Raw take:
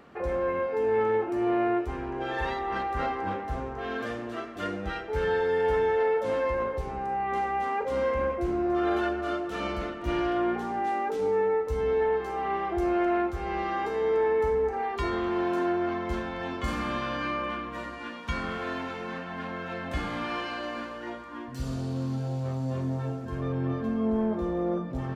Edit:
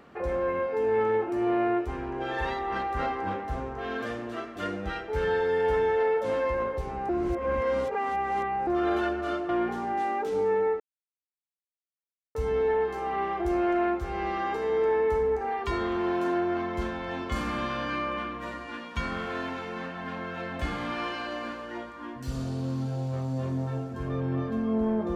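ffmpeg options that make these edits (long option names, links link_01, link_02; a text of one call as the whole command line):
ffmpeg -i in.wav -filter_complex "[0:a]asplit=5[link_01][link_02][link_03][link_04][link_05];[link_01]atrim=end=7.092[link_06];[link_02]atrim=start=7.088:end=8.672,asetpts=PTS-STARTPTS,areverse[link_07];[link_03]atrim=start=8.668:end=9.492[link_08];[link_04]atrim=start=10.358:end=11.67,asetpts=PTS-STARTPTS,afade=type=out:start_time=1.308:duration=0.004:curve=hsin,apad=pad_dur=1.55[link_09];[link_05]atrim=start=11.67,asetpts=PTS-STARTPTS,afade=type=in:duration=0.004:curve=hsin[link_10];[link_06][link_07]acrossfade=duration=0.004:curve1=hsin:curve2=hsin[link_11];[link_11][link_08]acrossfade=duration=0.004:curve1=hsin:curve2=hsin[link_12];[link_09][link_10]concat=n=2:v=0:a=1[link_13];[link_12][link_13]acrossfade=duration=0.004:curve1=hsin:curve2=hsin" out.wav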